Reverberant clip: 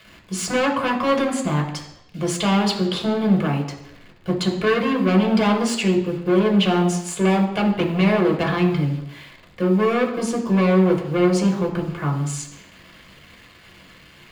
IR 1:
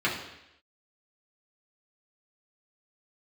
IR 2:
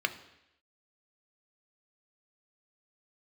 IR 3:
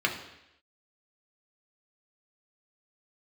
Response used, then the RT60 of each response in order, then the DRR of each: 3; 0.85 s, 0.85 s, 0.85 s; -6.5 dB, 7.5 dB, 0.0 dB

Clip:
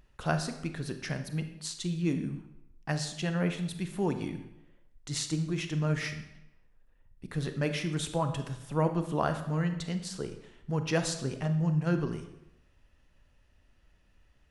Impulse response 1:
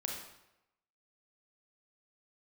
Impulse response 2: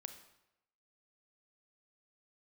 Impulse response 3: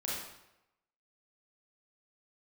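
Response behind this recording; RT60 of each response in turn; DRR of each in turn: 2; 0.90 s, 0.90 s, 0.90 s; -0.5 dB, 7.5 dB, -6.5 dB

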